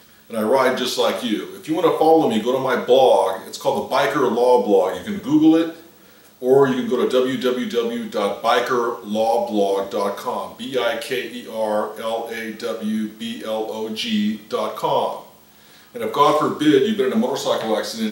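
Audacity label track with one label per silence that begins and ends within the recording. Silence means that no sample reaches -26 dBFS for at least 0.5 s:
5.710000	6.430000	silence
15.190000	15.960000	silence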